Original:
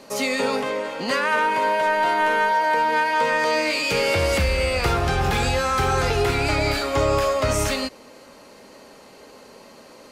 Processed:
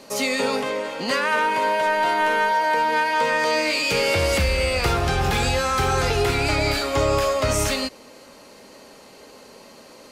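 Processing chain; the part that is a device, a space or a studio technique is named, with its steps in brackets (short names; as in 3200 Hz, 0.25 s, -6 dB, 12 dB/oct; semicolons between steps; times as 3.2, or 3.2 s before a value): exciter from parts (in parallel at -9 dB: HPF 2000 Hz 12 dB/oct + soft clip -21.5 dBFS, distortion -19 dB)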